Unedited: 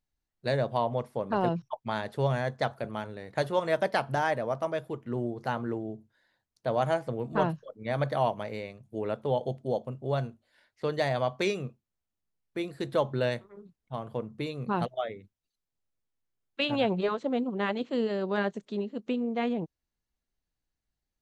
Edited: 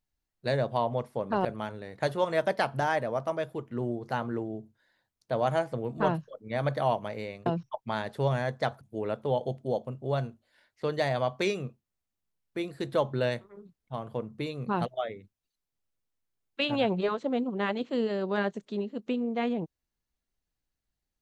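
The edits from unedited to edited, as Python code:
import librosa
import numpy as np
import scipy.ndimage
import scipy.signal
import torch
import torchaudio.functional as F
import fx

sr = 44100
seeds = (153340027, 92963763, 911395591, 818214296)

y = fx.edit(x, sr, fx.move(start_s=1.45, length_s=1.35, to_s=8.81), tone=tone)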